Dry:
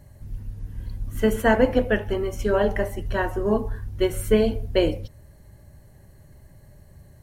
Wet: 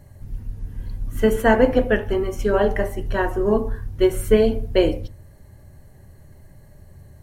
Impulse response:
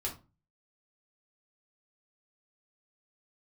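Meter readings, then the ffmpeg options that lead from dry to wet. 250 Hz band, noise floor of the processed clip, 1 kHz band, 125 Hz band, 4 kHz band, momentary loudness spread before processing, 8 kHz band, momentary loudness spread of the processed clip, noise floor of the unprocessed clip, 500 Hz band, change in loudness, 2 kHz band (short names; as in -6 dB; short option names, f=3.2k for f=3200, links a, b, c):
+2.5 dB, -47 dBFS, +3.0 dB, +1.5 dB, +1.0 dB, 17 LU, +1.0 dB, 18 LU, -51 dBFS, +3.5 dB, +3.0 dB, +2.0 dB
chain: -filter_complex "[0:a]asplit=2[a][b];[1:a]atrim=start_sample=2205,lowpass=2.6k[c];[b][c]afir=irnorm=-1:irlink=0,volume=-11dB[d];[a][d]amix=inputs=2:normalize=0,volume=1dB"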